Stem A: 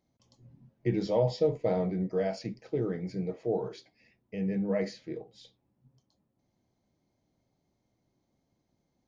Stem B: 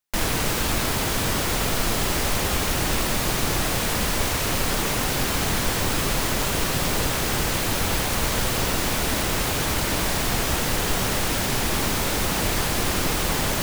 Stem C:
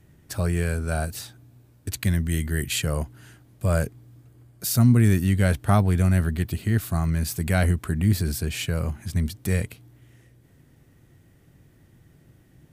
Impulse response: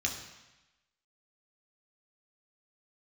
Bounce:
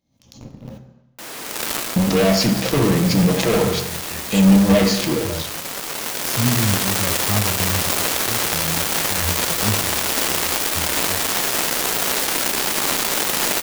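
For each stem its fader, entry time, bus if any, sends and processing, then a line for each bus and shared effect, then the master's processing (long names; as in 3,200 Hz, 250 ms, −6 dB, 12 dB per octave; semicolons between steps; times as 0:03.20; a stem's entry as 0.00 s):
+0.5 dB, 0.00 s, muted 0:00.78–0:01.96, send −4 dB, no echo send, leveller curve on the samples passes 5; background raised ahead of every attack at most 100 dB per second
−6.5 dB, 1.05 s, no send, echo send −15 dB, high-pass filter 290 Hz 12 dB per octave; automatic gain control gain up to 7 dB; log-companded quantiser 2 bits; automatic ducking −9 dB, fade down 0.25 s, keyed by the first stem
−2.5 dB, 1.60 s, send −8 dB, no echo send, spectral dynamics exaggerated over time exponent 3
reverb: on, RT60 1.0 s, pre-delay 3 ms
echo: single-tap delay 119 ms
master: parametric band 89 Hz −6 dB 0.34 octaves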